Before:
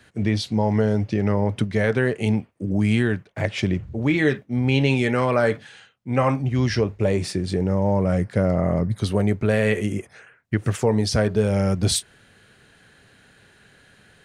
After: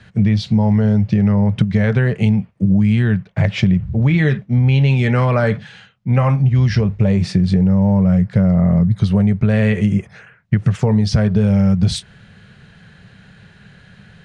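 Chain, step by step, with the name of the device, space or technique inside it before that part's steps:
jukebox (low-pass filter 5,200 Hz 12 dB per octave; low shelf with overshoot 230 Hz +6.5 dB, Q 3; downward compressor, threshold −16 dBFS, peak gain reduction 8 dB)
level +5.5 dB

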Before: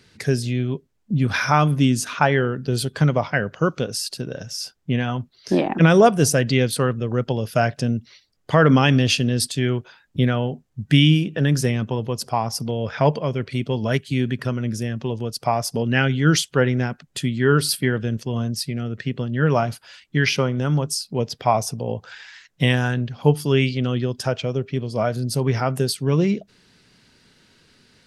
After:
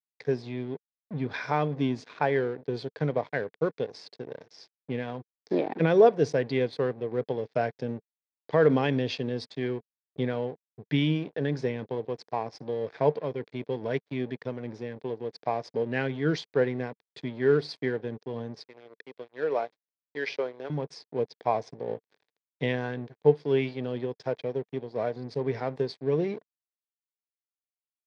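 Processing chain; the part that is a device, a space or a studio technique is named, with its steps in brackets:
0:18.58–0:20.70: Chebyshev high-pass filter 450 Hz, order 2
blown loudspeaker (dead-zone distortion −33.5 dBFS; loudspeaker in its box 160–4,100 Hz, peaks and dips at 200 Hz −7 dB, 450 Hz +8 dB, 1,300 Hz −9 dB, 2,900 Hz −10 dB)
level −7 dB

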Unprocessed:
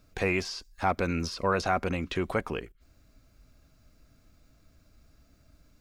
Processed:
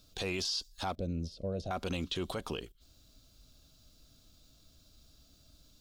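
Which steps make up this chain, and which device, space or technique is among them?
0:00.95–0:01.71: drawn EQ curve 150 Hz 0 dB, 390 Hz −8 dB, 620 Hz −3 dB, 980 Hz −29 dB, 3,000 Hz −22 dB
over-bright horn tweeter (high shelf with overshoot 2,700 Hz +8 dB, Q 3; brickwall limiter −22.5 dBFS, peak gain reduction 9.5 dB)
level −3 dB

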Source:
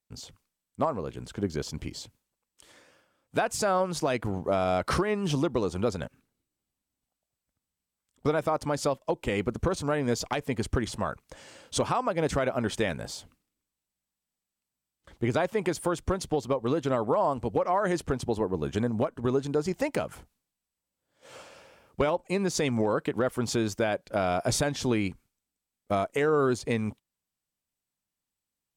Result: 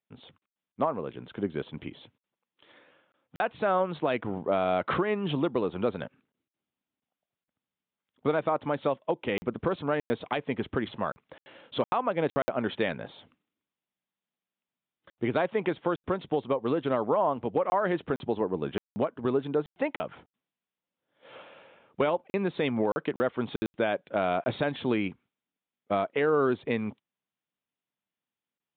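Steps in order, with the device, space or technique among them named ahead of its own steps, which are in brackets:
call with lost packets (high-pass filter 160 Hz 12 dB per octave; downsampling to 8,000 Hz; dropped packets bursts)

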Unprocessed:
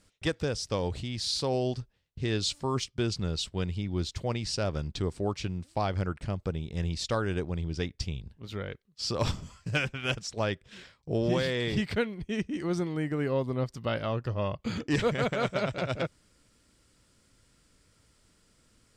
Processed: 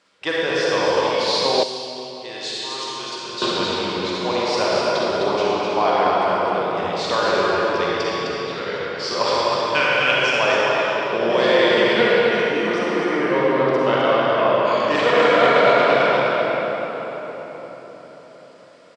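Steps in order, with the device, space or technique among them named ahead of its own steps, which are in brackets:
station announcement (band-pass filter 470–4,200 Hz; parametric band 1,000 Hz +5 dB 0.29 octaves; loudspeakers that aren't time-aligned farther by 15 metres −9 dB, 88 metres −5 dB; convolution reverb RT60 4.7 s, pre-delay 41 ms, DRR −6.5 dB)
0:01.63–0:03.42: first-order pre-emphasis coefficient 0.8
level +8 dB

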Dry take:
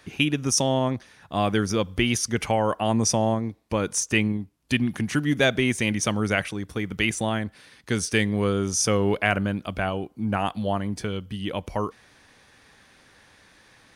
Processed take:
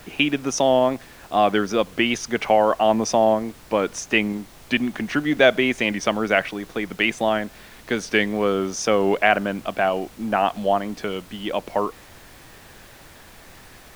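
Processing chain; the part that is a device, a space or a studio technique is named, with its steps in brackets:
high-pass filter 170 Hz 6 dB per octave
horn gramophone (band-pass filter 210–3,700 Hz; parametric band 670 Hz +5.5 dB 0.4 octaves; tape wow and flutter; pink noise bed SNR 24 dB)
level +4.5 dB

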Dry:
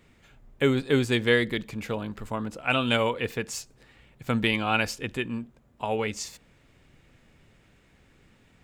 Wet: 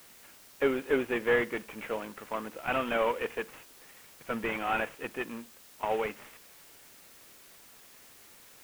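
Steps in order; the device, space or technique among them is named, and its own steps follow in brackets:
army field radio (band-pass filter 370–3,000 Hz; variable-slope delta modulation 16 kbit/s; white noise bed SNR 21 dB)

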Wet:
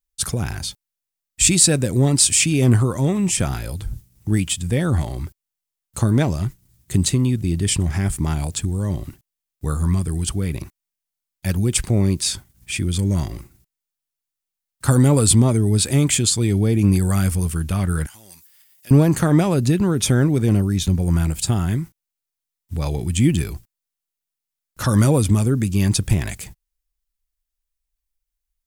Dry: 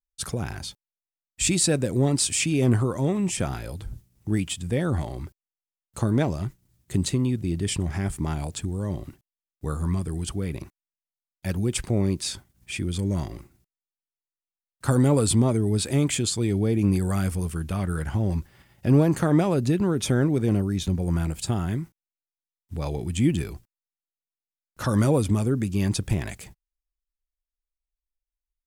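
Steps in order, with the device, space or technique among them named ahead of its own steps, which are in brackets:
smiley-face EQ (low-shelf EQ 160 Hz +3 dB; parametric band 480 Hz −3.5 dB 2.3 octaves; high-shelf EQ 6,000 Hz +6 dB)
0:18.06–0:18.91: first difference
level +5.5 dB

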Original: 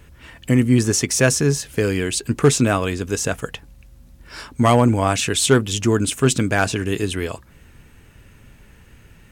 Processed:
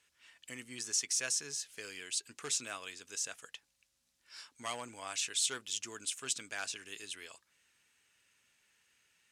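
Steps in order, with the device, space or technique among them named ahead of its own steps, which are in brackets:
piezo pickup straight into a mixer (low-pass filter 6,400 Hz 12 dB per octave; first difference)
level −6.5 dB

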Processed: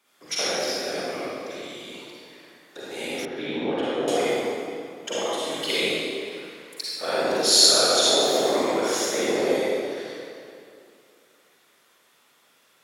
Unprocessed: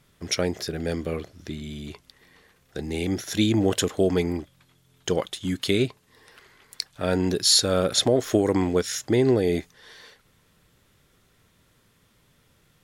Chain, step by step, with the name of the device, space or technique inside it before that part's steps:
whispering ghost (random phases in short frames; high-pass filter 510 Hz 12 dB per octave; convolution reverb RT60 2.5 s, pre-delay 38 ms, DRR −9 dB)
0:03.25–0:04.08: high-frequency loss of the air 480 metres
level −4 dB

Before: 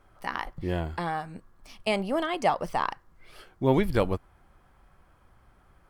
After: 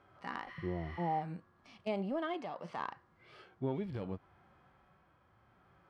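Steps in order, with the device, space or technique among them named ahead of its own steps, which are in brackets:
0:00.50–0:01.19: healed spectral selection 1,000–12,000 Hz before
AM radio (band-pass filter 110–4,100 Hz; downward compressor 10 to 1, threshold −28 dBFS, peak gain reduction 12 dB; soft clipping −20 dBFS, distortion −23 dB; amplitude tremolo 0.67 Hz, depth 34%)
0:02.34–0:02.80: high-pass filter 160 Hz
harmonic and percussive parts rebalanced percussive −14 dB
level +2 dB

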